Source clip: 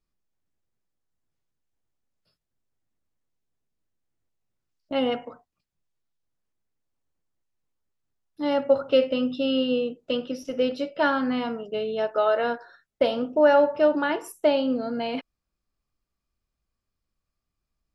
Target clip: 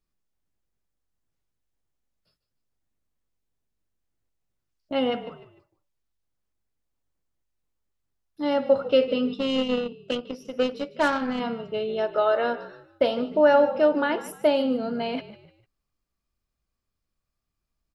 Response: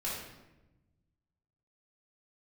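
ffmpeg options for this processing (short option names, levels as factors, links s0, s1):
-filter_complex "[0:a]asplit=4[s0][s1][s2][s3];[s1]adelay=150,afreqshift=-48,volume=0.168[s4];[s2]adelay=300,afreqshift=-96,volume=0.0603[s5];[s3]adelay=450,afreqshift=-144,volume=0.0219[s6];[s0][s4][s5][s6]amix=inputs=4:normalize=0,asettb=1/sr,asplit=3[s7][s8][s9];[s7]atrim=end=9.344[s10];[s8]atrim=start=9.34:end=11.4,asetpts=PTS-STARTPTS,afade=t=in:d=0.004:c=qsin,afade=t=out:st=2.056:d=0.004:c=qsin,aeval=exprs='0.299*(cos(1*acos(clip(val(0)/0.299,-1,1)))-cos(1*PI/2))+0.0237*(cos(7*acos(clip(val(0)/0.299,-1,1)))-cos(7*PI/2))':c=same[s11];[s9]atrim=start=11.396[s12];[s10][s11]acrossfade=d=0.004:c1=hsin:c2=qsin[s13];[s13][s12]acrossfade=d=0.004:c1=qsin:c2=hsin"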